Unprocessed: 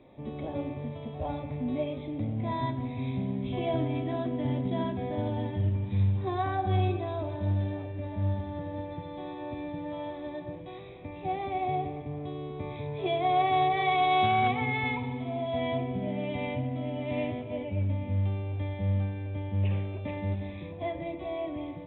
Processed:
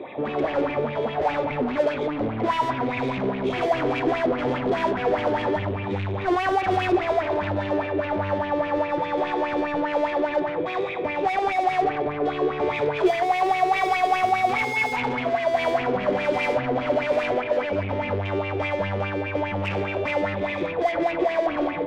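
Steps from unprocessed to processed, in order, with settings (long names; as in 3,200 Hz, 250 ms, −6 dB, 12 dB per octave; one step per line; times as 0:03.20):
0:17.09–0:17.76: bass and treble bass −6 dB, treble −6 dB
mid-hump overdrive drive 32 dB, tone 2,100 Hz, clips at −16 dBFS
auto-filter bell 4.9 Hz 350–2,700 Hz +14 dB
level −5.5 dB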